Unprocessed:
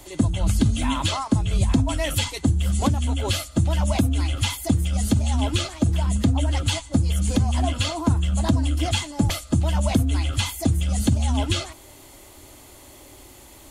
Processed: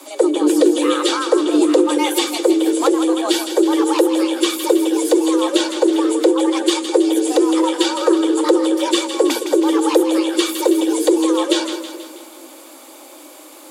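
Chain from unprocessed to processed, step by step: frequency shift +250 Hz; two-band feedback delay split 480 Hz, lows 214 ms, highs 161 ms, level -9 dB; trim +5 dB

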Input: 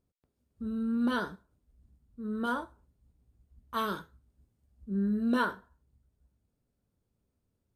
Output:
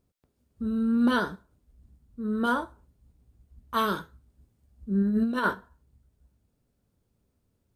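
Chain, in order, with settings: 5.02–5.54 s: compressor with a negative ratio -30 dBFS, ratio -0.5; trim +6 dB

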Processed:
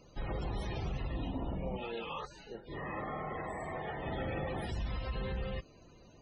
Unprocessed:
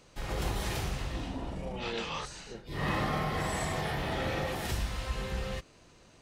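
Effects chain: peaking EQ 1.4 kHz -3 dB 2.3 oct; peak limiter -30 dBFS, peak gain reduction 9.5 dB; loudest bins only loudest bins 64; 1.77–4.06 s: tone controls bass -9 dB, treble -14 dB; trim +2 dB

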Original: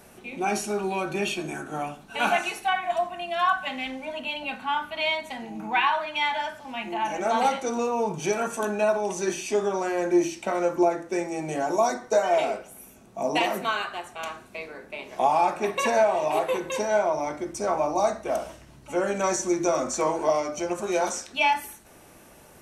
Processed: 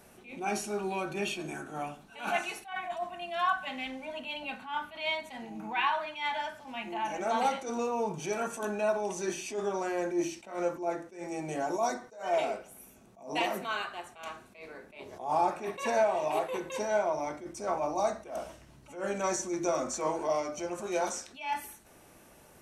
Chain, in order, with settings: 15.00–15.51 s: fifteen-band graphic EQ 100 Hz +12 dB, 400 Hz +5 dB, 2.5 kHz -8 dB; attacks held to a fixed rise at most 130 dB/s; trim -5.5 dB

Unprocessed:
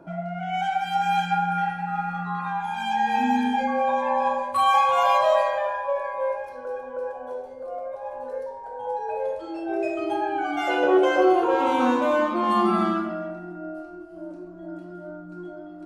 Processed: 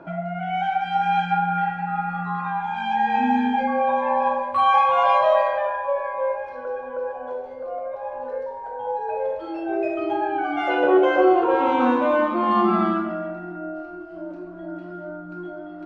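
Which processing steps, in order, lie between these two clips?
low-pass 2.9 kHz 12 dB/octave; tape noise reduction on one side only encoder only; trim +2 dB

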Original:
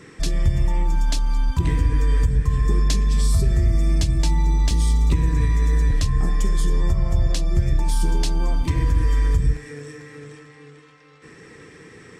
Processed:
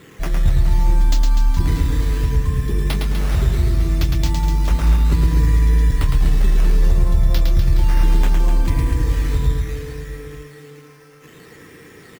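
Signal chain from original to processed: decimation with a swept rate 8×, swing 100% 0.66 Hz; reverse bouncing-ball echo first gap 110 ms, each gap 1.25×, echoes 5

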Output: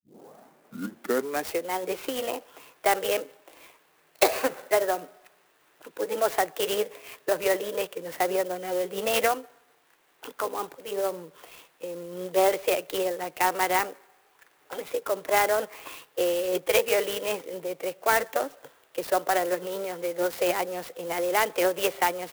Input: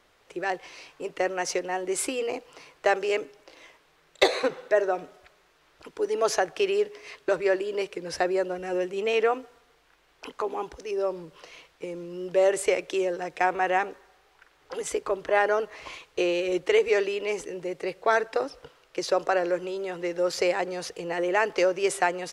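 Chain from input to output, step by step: tape start-up on the opening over 1.69 s; high-pass 170 Hz 24 dB/octave; formant shift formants +2 st; low-pass 5 kHz 24 dB/octave; sampling jitter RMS 0.047 ms

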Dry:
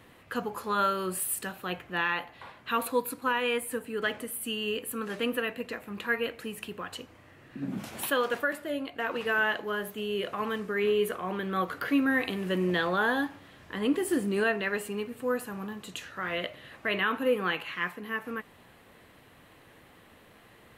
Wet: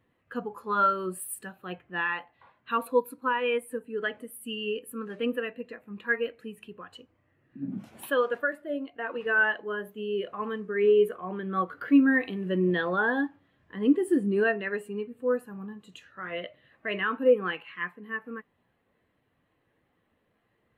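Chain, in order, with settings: spectral contrast expander 1.5:1; trim +4 dB

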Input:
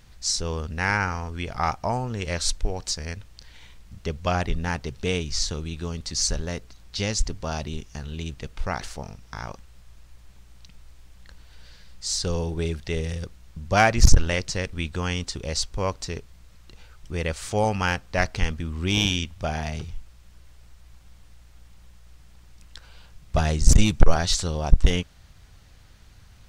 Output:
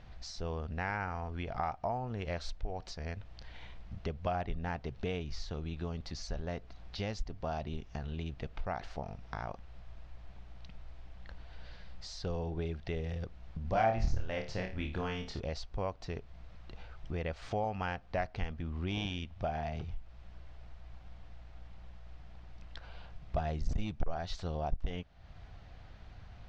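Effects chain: peaking EQ 700 Hz +8.5 dB 0.44 oct; compression 2.5:1, threshold -37 dBFS, peak gain reduction 20.5 dB; distance through air 230 m; 13.62–15.40 s: flutter echo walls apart 4.6 m, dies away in 0.34 s

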